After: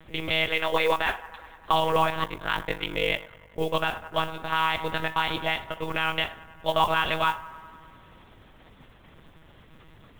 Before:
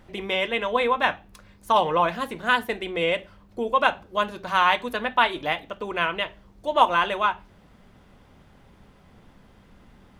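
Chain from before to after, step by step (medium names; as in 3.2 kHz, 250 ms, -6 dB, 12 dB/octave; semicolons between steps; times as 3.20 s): monotone LPC vocoder at 8 kHz 160 Hz; feedback echo behind a band-pass 99 ms, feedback 74%, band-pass 930 Hz, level -21 dB; modulation noise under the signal 34 dB; 0.48–1.73 s: peaking EQ 130 Hz -11.5 dB 1.2 oct; 2.24–3.59 s: ring modulator 24 Hz; treble shelf 2.5 kHz +10 dB; peak limiter -11 dBFS, peak gain reduction 11.5 dB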